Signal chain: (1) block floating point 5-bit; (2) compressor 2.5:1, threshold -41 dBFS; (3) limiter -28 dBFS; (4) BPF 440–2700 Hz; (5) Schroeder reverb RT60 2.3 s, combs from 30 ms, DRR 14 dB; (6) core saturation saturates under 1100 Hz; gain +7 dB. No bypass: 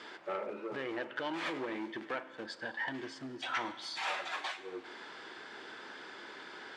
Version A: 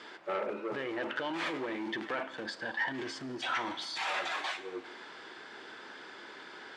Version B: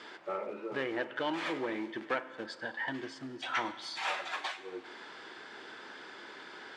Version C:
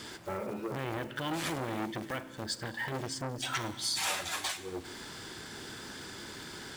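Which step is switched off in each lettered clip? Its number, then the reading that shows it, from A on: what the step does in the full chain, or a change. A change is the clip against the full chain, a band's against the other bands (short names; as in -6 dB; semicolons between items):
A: 2, mean gain reduction 8.0 dB; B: 3, crest factor change +2.5 dB; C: 4, 8 kHz band +14.5 dB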